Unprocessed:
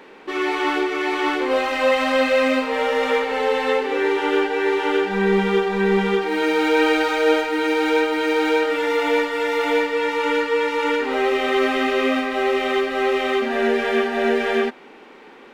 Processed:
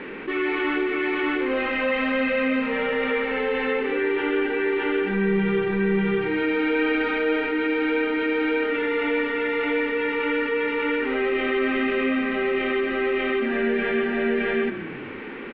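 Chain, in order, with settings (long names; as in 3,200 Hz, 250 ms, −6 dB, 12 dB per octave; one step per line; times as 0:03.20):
low-pass filter 2,500 Hz 24 dB per octave
parametric band 780 Hz −14.5 dB 1.6 octaves
on a send: echo with shifted repeats 124 ms, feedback 49%, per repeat −32 Hz, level −19 dB
on the sum: envelope flattener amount 50%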